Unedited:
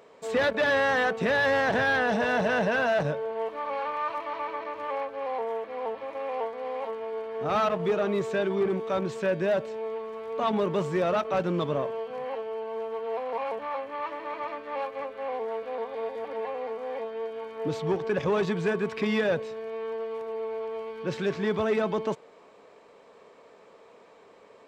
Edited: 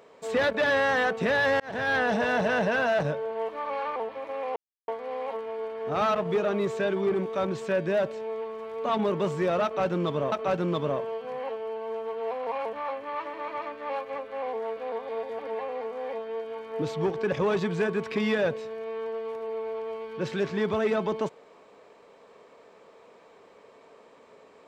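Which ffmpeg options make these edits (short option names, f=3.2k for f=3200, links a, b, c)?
-filter_complex "[0:a]asplit=5[a][b][c][d][e];[a]atrim=end=1.6,asetpts=PTS-STARTPTS,afade=t=out:st=1.596:d=0.004:c=hsin[f];[b]atrim=start=1.6:end=3.962,asetpts=PTS-STARTPTS,afade=t=in:d=0.36[g];[c]atrim=start=5.818:end=6.42,asetpts=PTS-STARTPTS,afade=t=out:st=0.598:d=0.004:c=hsin,apad=pad_dur=0.32[h];[d]atrim=start=6.42:end=11.862,asetpts=PTS-STARTPTS,afade=t=in:d=0.004:c=hsin[i];[e]atrim=start=11.178[j];[f][g]concat=n=2:v=0:a=1[k];[h][i]concat=n=2:v=0:a=1[l];[k][l]acrossfade=d=0.004:c1=hsin:c2=hsin[m];[m][j]acrossfade=d=0.004:c1=hsin:c2=hsin"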